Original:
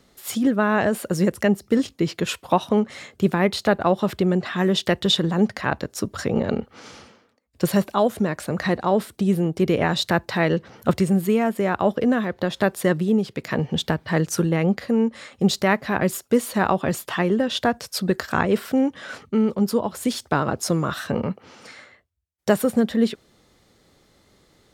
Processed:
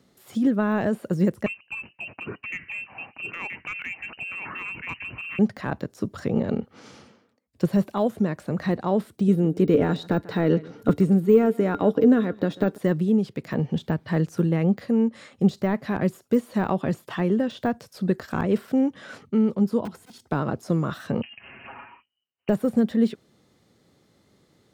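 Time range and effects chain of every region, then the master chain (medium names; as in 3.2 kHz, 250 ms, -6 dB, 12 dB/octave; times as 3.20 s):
1.46–5.39 s: frequency inversion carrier 2.9 kHz + delay 977 ms -9.5 dB
9.28–12.78 s: small resonant body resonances 290/440/1400/3800 Hz, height 12 dB, ringing for 85 ms + delay 142 ms -22 dB
19.85–20.29 s: integer overflow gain 20 dB + slow attack 242 ms + comb of notches 580 Hz
21.22–22.49 s: comb 6.9 ms, depth 68% + compressor with a negative ratio -34 dBFS + frequency inversion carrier 3 kHz
whole clip: high-pass 120 Hz; de-esser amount 90%; bass shelf 320 Hz +9.5 dB; trim -6.5 dB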